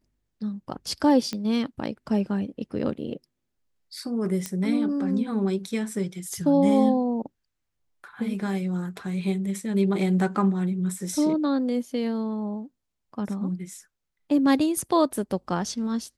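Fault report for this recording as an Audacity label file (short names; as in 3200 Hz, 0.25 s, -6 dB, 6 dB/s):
1.330000	1.330000	pop -17 dBFS
4.460000	4.460000	pop -14 dBFS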